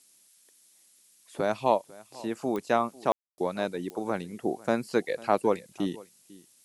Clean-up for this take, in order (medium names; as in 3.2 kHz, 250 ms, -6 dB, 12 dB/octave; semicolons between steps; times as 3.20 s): de-click; room tone fill 3.12–3.38 s; noise print and reduce 12 dB; inverse comb 498 ms -21.5 dB